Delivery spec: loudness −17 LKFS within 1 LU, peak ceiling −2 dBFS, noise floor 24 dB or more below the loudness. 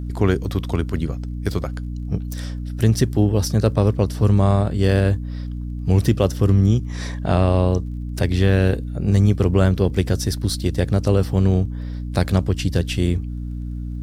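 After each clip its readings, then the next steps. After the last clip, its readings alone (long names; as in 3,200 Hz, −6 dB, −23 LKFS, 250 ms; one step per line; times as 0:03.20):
crackle rate 23 per second; mains hum 60 Hz; hum harmonics up to 300 Hz; level of the hum −25 dBFS; integrated loudness −20.5 LKFS; sample peak −4.0 dBFS; target loudness −17.0 LKFS
→ click removal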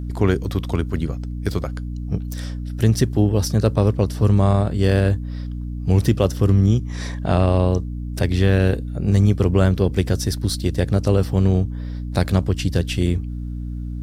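crackle rate 0.50 per second; mains hum 60 Hz; hum harmonics up to 300 Hz; level of the hum −25 dBFS
→ mains-hum notches 60/120/180/240/300 Hz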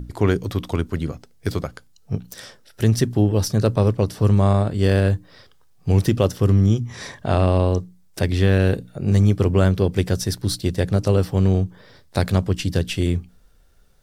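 mains hum none found; integrated loudness −20.5 LKFS; sample peak −4.5 dBFS; target loudness −17.0 LKFS
→ level +3.5 dB
brickwall limiter −2 dBFS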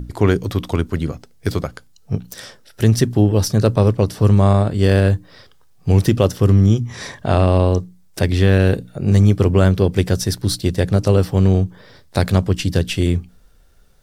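integrated loudness −17.0 LKFS; sample peak −2.0 dBFS; background noise floor −49 dBFS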